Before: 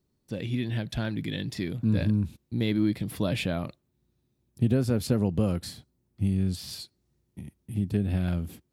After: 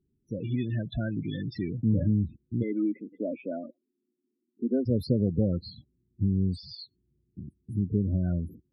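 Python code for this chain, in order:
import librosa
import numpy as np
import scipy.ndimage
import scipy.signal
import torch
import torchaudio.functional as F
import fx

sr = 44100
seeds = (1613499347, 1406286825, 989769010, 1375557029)

y = fx.spec_topn(x, sr, count=16)
y = fx.cheby1_bandpass(y, sr, low_hz=240.0, high_hz=2000.0, order=4, at=(2.62, 4.85), fade=0.02)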